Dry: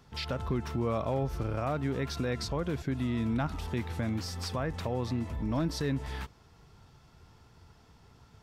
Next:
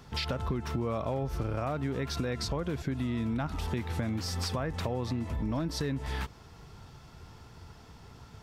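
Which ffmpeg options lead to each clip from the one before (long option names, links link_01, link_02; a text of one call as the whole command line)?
ffmpeg -i in.wav -af "acompressor=threshold=-37dB:ratio=4,volume=7dB" out.wav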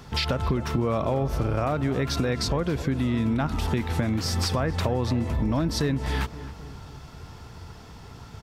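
ffmpeg -i in.wav -filter_complex "[0:a]asplit=2[link_01][link_02];[link_02]adelay=263,lowpass=frequency=1500:poles=1,volume=-13.5dB,asplit=2[link_03][link_04];[link_04]adelay=263,lowpass=frequency=1500:poles=1,volume=0.54,asplit=2[link_05][link_06];[link_06]adelay=263,lowpass=frequency=1500:poles=1,volume=0.54,asplit=2[link_07][link_08];[link_08]adelay=263,lowpass=frequency=1500:poles=1,volume=0.54,asplit=2[link_09][link_10];[link_10]adelay=263,lowpass=frequency=1500:poles=1,volume=0.54[link_11];[link_01][link_03][link_05][link_07][link_09][link_11]amix=inputs=6:normalize=0,volume=7dB" out.wav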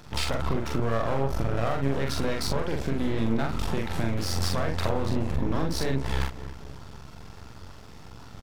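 ffmpeg -i in.wav -filter_complex "[0:a]aeval=exprs='max(val(0),0)':channel_layout=same,asplit=2[link_01][link_02];[link_02]adelay=44,volume=-3dB[link_03];[link_01][link_03]amix=inputs=2:normalize=0" out.wav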